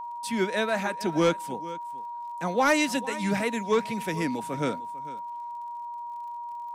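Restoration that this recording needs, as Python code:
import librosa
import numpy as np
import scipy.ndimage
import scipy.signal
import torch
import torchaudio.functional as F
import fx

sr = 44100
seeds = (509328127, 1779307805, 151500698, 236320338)

y = fx.fix_declip(x, sr, threshold_db=-14.5)
y = fx.fix_declick_ar(y, sr, threshold=6.5)
y = fx.notch(y, sr, hz=950.0, q=30.0)
y = fx.fix_echo_inverse(y, sr, delay_ms=448, level_db=-17.5)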